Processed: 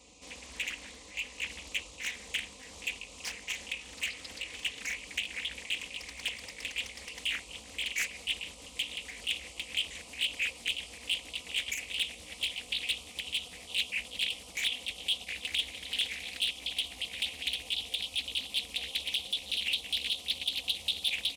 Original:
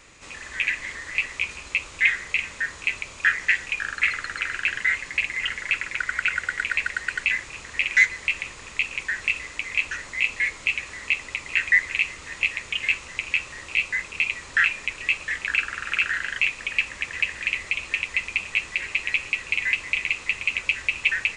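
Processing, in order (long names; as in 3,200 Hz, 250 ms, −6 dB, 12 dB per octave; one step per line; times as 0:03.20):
pitch glide at a constant tempo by +5.5 semitones starting unshifted
high-pass filter 48 Hz 24 dB per octave
hard clipping −19.5 dBFS, distortion −9 dB
Butterworth band-reject 1,600 Hz, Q 0.93
comb filter 4 ms, depth 79%
highs frequency-modulated by the lows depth 0.62 ms
level −5.5 dB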